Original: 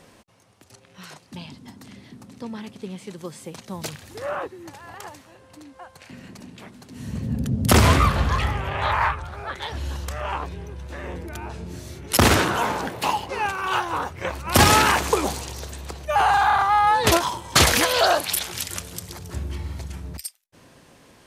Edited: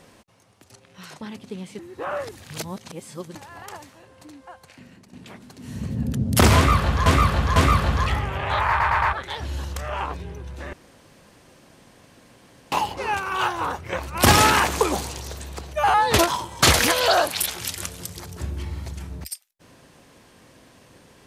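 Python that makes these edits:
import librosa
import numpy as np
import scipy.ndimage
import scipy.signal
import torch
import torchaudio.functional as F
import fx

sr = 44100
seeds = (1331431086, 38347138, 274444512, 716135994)

y = fx.edit(x, sr, fx.cut(start_s=1.21, length_s=1.32),
    fx.reverse_span(start_s=3.11, length_s=1.56),
    fx.fade_out_to(start_s=5.75, length_s=0.7, floor_db=-12.0),
    fx.repeat(start_s=7.88, length_s=0.5, count=3),
    fx.stutter_over(start_s=9.01, slice_s=0.11, count=4),
    fx.room_tone_fill(start_s=11.05, length_s=1.99),
    fx.cut(start_s=16.26, length_s=0.61), tone=tone)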